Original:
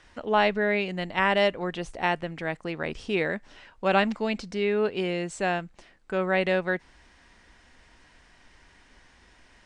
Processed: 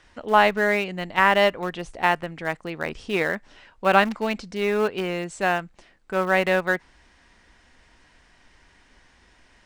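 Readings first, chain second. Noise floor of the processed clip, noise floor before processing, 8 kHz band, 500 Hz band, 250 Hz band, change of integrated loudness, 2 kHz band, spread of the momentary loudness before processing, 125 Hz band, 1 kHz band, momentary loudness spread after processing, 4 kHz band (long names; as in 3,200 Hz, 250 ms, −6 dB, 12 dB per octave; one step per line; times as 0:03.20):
−58 dBFS, −58 dBFS, +4.0 dB, +2.5 dB, +1.0 dB, +4.0 dB, +5.0 dB, 9 LU, +1.0 dB, +6.0 dB, 11 LU, +3.0 dB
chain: dynamic equaliser 1,200 Hz, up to +6 dB, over −36 dBFS, Q 1
in parallel at −12 dB: centre clipping without the shift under −21.5 dBFS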